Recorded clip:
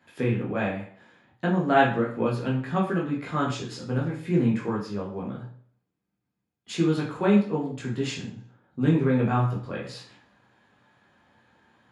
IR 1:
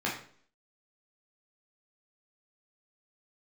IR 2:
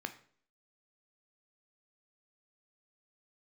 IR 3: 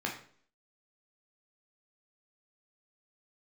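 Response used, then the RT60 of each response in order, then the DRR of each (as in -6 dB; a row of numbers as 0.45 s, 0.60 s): 1; 0.50 s, 0.50 s, 0.50 s; -4.5 dB, 8.0 dB, -0.5 dB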